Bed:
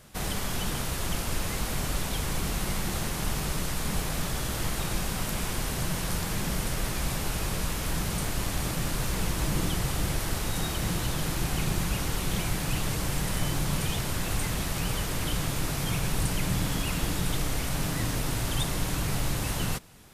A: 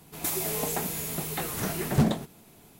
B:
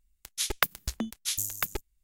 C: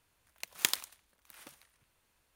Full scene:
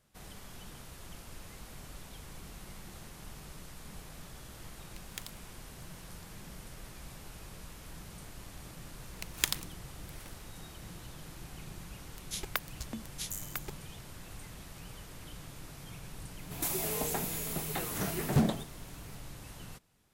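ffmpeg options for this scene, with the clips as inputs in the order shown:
-filter_complex "[3:a]asplit=2[a][b];[0:a]volume=-18dB[c];[a]atrim=end=2.35,asetpts=PTS-STARTPTS,volume=-15dB,afade=t=in:d=0.004:c=hsin,afade=t=out:st=2.346:d=0.004:c=hsin,adelay=199773S[d];[b]atrim=end=2.35,asetpts=PTS-STARTPTS,volume=-1dB,afade=t=in:d=0.004:c=hsin,afade=t=out:st=2.346:d=0.004:c=hsin,adelay=8790[e];[2:a]atrim=end=2.03,asetpts=PTS-STARTPTS,volume=-9dB,afade=t=in:d=0.004:c=hsin,afade=t=out:st=2.026:d=0.004:c=hsin,adelay=11930[f];[1:a]atrim=end=2.79,asetpts=PTS-STARTPTS,volume=-4dB,afade=t=in:d=0.004:c=hsin,afade=t=out:st=2.786:d=0.004:c=hsin,adelay=16380[g];[c][d][e][f][g]amix=inputs=5:normalize=0"

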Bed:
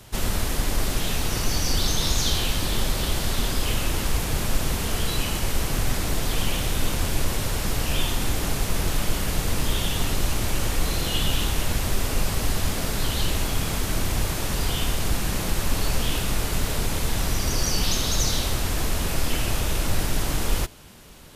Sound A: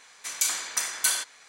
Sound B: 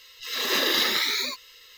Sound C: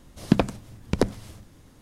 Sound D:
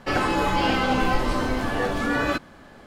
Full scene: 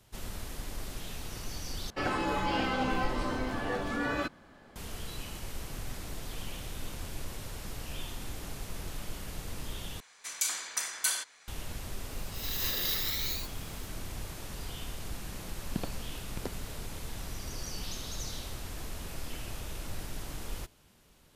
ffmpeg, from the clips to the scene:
-filter_complex "[0:a]volume=-15.5dB[a];[2:a]aemphasis=mode=production:type=75fm[b];[a]asplit=3[c][d][e];[c]atrim=end=1.904[f];[4:a]atrim=end=2.86,asetpts=PTS-STARTPTS,volume=-8.5dB[g];[d]atrim=start=4.756:end=10.004[h];[1:a]atrim=end=1.48,asetpts=PTS-STARTPTS,volume=-5.5dB[i];[e]atrim=start=11.476[j];[b]atrim=end=1.77,asetpts=PTS-STARTPTS,volume=-17dB,afade=t=in:d=0.004:c=hsin,afade=t=out:st=1.766:d=0.004:c=hsin,adelay=12110[k];[3:a]atrim=end=1.81,asetpts=PTS-STARTPTS,volume=-17dB,afade=t=in:d=0.004:c=hsin,afade=t=out:st=1.806:d=0.004:c=hsin,adelay=15440[l];[f][g]acrossfade=d=0.004:c1=hsin:c2=hsin[m];[m][h]acrossfade=d=0.004:c1=hsin:c2=hsin[n];[n][i]acrossfade=d=0.004:c1=hsin:c2=hsin[o];[o][j]acrossfade=d=0.004:c1=hsin:c2=hsin[p];[p][k][l]amix=inputs=3:normalize=0"

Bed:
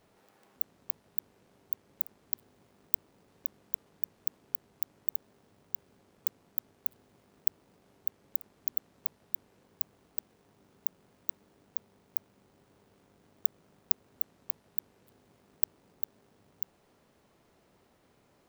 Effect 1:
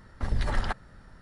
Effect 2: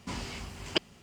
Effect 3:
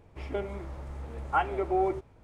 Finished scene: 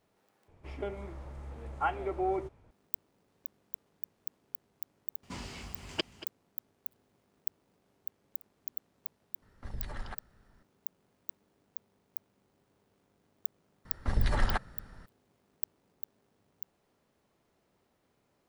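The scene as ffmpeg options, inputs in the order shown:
-filter_complex "[1:a]asplit=2[a][b];[0:a]volume=-7.5dB[c];[2:a]aecho=1:1:232:0.178[d];[c]asplit=2[e][f];[e]atrim=end=0.484[g];[3:a]atrim=end=2.23,asetpts=PTS-STARTPTS,volume=-4.5dB[h];[f]atrim=start=2.706[i];[d]atrim=end=1.02,asetpts=PTS-STARTPTS,volume=-5dB,afade=t=in:d=0.004:c=hsin,afade=t=out:st=1.016:d=0.004:c=hsin,adelay=5230[j];[a]atrim=end=1.21,asetpts=PTS-STARTPTS,volume=-13dB,afade=t=in:d=0.004:c=hsin,afade=t=out:st=1.206:d=0.004:c=hsin,adelay=9420[k];[b]atrim=end=1.21,asetpts=PTS-STARTPTS,volume=-0.5dB,afade=t=in:d=0.004:c=hsin,afade=t=out:st=1.206:d=0.004:c=hsin,adelay=13850[l];[g][h]acrossfade=d=0.004:c1=hsin:c2=hsin[m];[m][i]acrossfade=d=0.004:c1=hsin:c2=hsin[n];[n][j][k][l]amix=inputs=4:normalize=0"

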